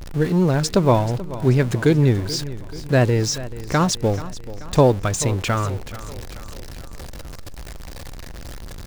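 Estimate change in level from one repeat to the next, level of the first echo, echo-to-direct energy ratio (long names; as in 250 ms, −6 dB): −5.5 dB, −16.0 dB, −14.5 dB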